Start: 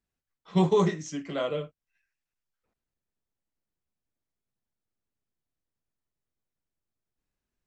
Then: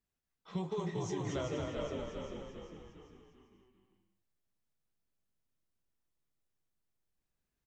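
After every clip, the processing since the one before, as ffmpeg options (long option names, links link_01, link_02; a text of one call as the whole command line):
ffmpeg -i in.wav -filter_complex "[0:a]asplit=2[link_01][link_02];[link_02]asplit=5[link_03][link_04][link_05][link_06][link_07];[link_03]adelay=400,afreqshift=-51,volume=-9.5dB[link_08];[link_04]adelay=800,afreqshift=-102,volume=-16.1dB[link_09];[link_05]adelay=1200,afreqshift=-153,volume=-22.6dB[link_10];[link_06]adelay=1600,afreqshift=-204,volume=-29.2dB[link_11];[link_07]adelay=2000,afreqshift=-255,volume=-35.7dB[link_12];[link_08][link_09][link_10][link_11][link_12]amix=inputs=5:normalize=0[link_13];[link_01][link_13]amix=inputs=2:normalize=0,acompressor=threshold=-32dB:ratio=8,asplit=2[link_14][link_15];[link_15]aecho=0:1:230|379.5|476.7|539.8|580.9:0.631|0.398|0.251|0.158|0.1[link_16];[link_14][link_16]amix=inputs=2:normalize=0,volume=-3dB" out.wav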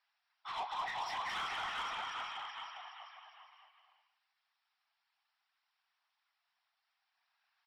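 ffmpeg -i in.wav -filter_complex "[0:a]afftfilt=real='re*between(b*sr/4096,720,5700)':imag='im*between(b*sr/4096,720,5700)':win_size=4096:overlap=0.75,afftfilt=real='hypot(re,im)*cos(2*PI*random(0))':imag='hypot(re,im)*sin(2*PI*random(1))':win_size=512:overlap=0.75,asplit=2[link_01][link_02];[link_02]highpass=frequency=720:poles=1,volume=18dB,asoftclip=type=tanh:threshold=-40.5dB[link_03];[link_01][link_03]amix=inputs=2:normalize=0,lowpass=frequency=2800:poles=1,volume=-6dB,volume=10dB" out.wav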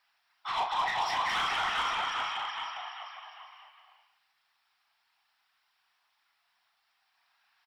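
ffmpeg -i in.wav -filter_complex "[0:a]asplit=2[link_01][link_02];[link_02]adelay=36,volume=-8dB[link_03];[link_01][link_03]amix=inputs=2:normalize=0,volume=8.5dB" out.wav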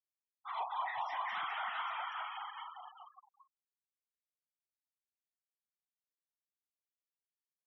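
ffmpeg -i in.wav -af "afftfilt=real='re*gte(hypot(re,im),0.0251)':imag='im*gte(hypot(re,im),0.0251)':win_size=1024:overlap=0.75,highpass=120,lowpass=2500,volume=-7.5dB" out.wav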